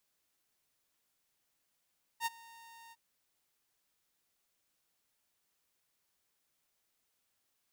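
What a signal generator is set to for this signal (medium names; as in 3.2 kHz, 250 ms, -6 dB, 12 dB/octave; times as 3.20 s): ADSR saw 921 Hz, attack 61 ms, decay 26 ms, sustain -23 dB, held 0.72 s, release 36 ms -27.5 dBFS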